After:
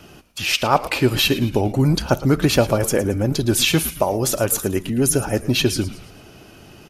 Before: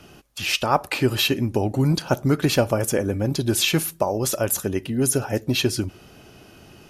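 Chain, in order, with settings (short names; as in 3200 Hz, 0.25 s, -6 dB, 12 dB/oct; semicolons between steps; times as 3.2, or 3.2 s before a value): frequency-shifting echo 0.111 s, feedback 46%, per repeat -100 Hz, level -15 dB; vibrato 13 Hz 32 cents; gain +3 dB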